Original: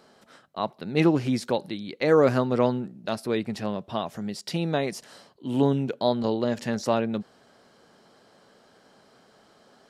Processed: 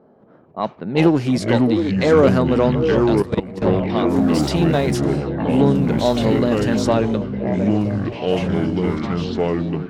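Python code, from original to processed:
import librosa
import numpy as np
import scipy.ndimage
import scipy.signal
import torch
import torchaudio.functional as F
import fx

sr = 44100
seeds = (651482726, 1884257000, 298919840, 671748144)

p1 = fx.zero_step(x, sr, step_db=-38.0, at=(4.16, 4.97))
p2 = fx.low_shelf(p1, sr, hz=490.0, db=3.0)
p3 = fx.echo_stepped(p2, sr, ms=715, hz=390.0, octaves=0.7, feedback_pct=70, wet_db=-6.5)
p4 = fx.echo_pitch(p3, sr, ms=197, semitones=-5, count=3, db_per_echo=-3.0)
p5 = 10.0 ** (-22.0 / 20.0) * np.tanh(p4 / 10.0 ** (-22.0 / 20.0))
p6 = p4 + (p5 * 10.0 ** (-4.0 / 20.0))
p7 = fx.env_lowpass(p6, sr, base_hz=640.0, full_db=-15.5)
p8 = fx.low_shelf(p7, sr, hz=77.0, db=-6.0)
p9 = fx.level_steps(p8, sr, step_db=17, at=(3.03, 3.62))
y = p9 * 10.0 ** (2.0 / 20.0)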